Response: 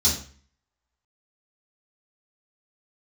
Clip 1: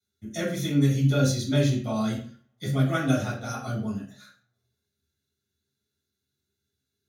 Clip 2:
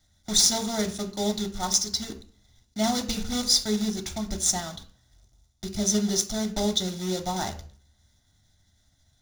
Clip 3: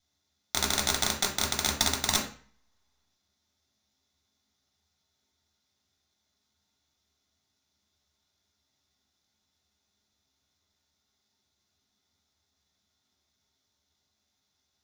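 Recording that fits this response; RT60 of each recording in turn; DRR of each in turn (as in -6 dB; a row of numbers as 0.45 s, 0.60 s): 1; 0.45 s, 0.45 s, 0.45 s; -9.5 dB, 5.5 dB, -2.0 dB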